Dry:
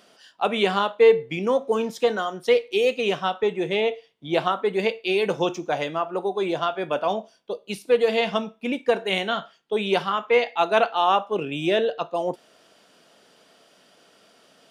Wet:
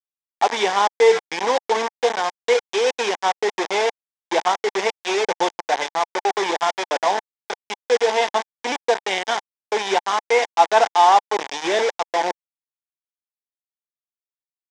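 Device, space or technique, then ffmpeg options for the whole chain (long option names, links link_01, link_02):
hand-held game console: -af "acrusher=bits=3:mix=0:aa=0.000001,highpass=500,equalizer=frequency=580:width_type=q:width=4:gain=-5,equalizer=frequency=860:width_type=q:width=4:gain=7,equalizer=frequency=1300:width_type=q:width=4:gain=-9,equalizer=frequency=2700:width_type=q:width=4:gain=-9,equalizer=frequency=4300:width_type=q:width=4:gain=-9,lowpass=frequency=5800:width=0.5412,lowpass=frequency=5800:width=1.3066,volume=5.5dB"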